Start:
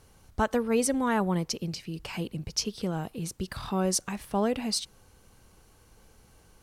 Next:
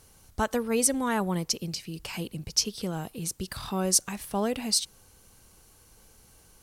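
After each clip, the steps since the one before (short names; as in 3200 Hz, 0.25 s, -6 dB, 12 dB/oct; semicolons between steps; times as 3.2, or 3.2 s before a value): high shelf 4500 Hz +10.5 dB; gain -1.5 dB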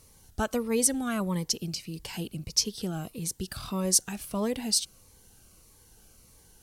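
cascading phaser falling 1.6 Hz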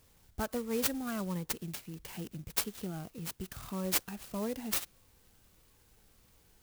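clock jitter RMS 0.062 ms; gain -6.5 dB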